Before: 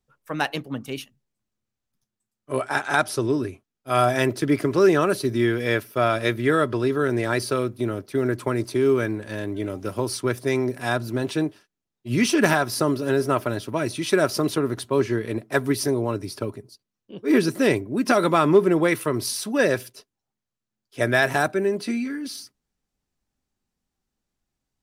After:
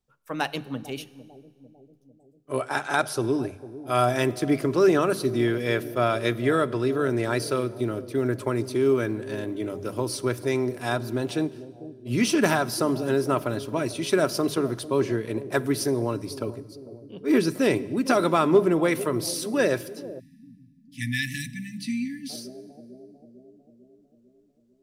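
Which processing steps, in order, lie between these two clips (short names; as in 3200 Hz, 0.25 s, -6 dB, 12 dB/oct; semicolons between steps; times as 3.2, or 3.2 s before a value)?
bell 1800 Hz -3 dB 0.59 oct; notches 50/100/150/200 Hz; on a send: analogue delay 0.448 s, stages 2048, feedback 59%, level -15 dB; on the sum: Schroeder reverb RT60 1.6 s, combs from 33 ms, DRR 19 dB; spectral delete 20.19–22.3, 290–1700 Hz; gain -2 dB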